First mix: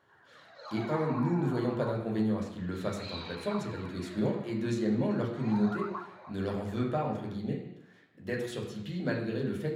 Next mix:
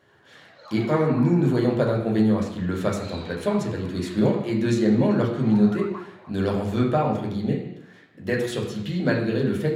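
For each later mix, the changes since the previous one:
speech +9.5 dB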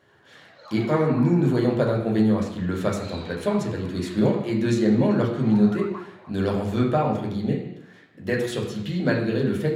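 none

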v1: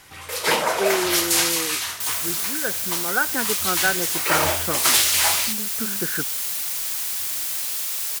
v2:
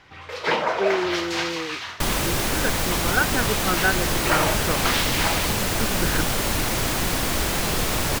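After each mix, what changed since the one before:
first sound: add air absorption 210 m; second sound: remove differentiator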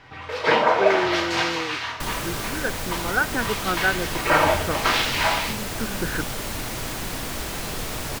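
first sound: add high shelf 4000 Hz -6.5 dB; second sound -7.5 dB; reverb: on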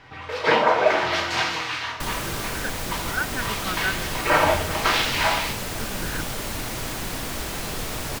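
speech: add bell 450 Hz -12 dB 2.7 oct

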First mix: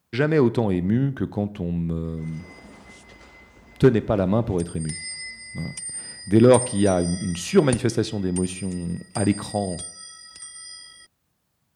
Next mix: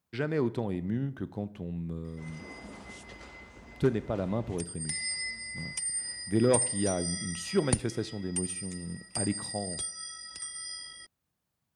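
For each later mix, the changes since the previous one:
speech -10.5 dB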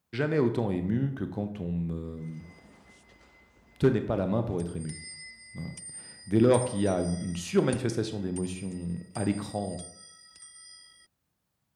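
speech: send +11.5 dB; background -10.0 dB

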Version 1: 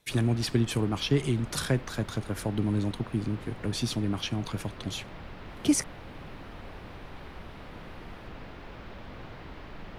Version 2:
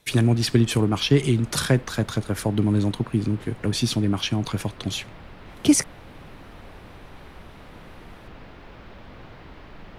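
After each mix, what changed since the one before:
speech +7.0 dB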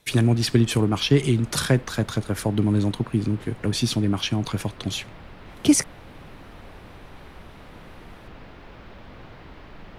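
none

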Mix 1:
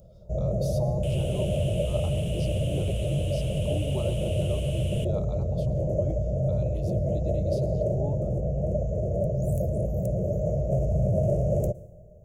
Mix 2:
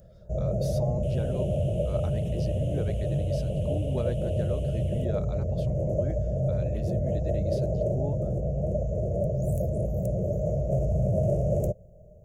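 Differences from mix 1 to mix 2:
speech: remove fixed phaser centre 340 Hz, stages 8; second sound -11.5 dB; reverb: off

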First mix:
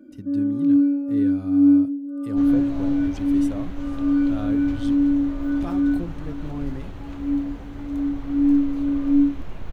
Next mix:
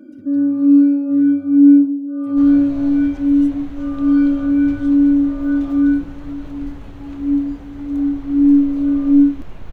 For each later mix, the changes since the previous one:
speech -10.5 dB; first sound +6.5 dB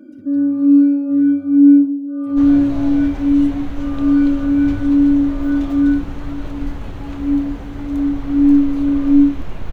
second sound +7.0 dB

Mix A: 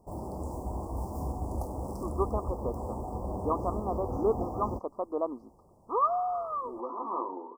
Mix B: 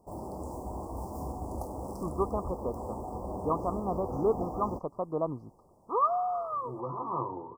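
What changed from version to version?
speech: remove brick-wall FIR high-pass 200 Hz; background: add low shelf 140 Hz -6.5 dB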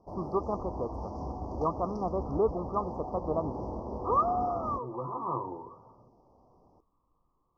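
speech: entry -1.85 s; background: add steep low-pass 6000 Hz 72 dB/oct

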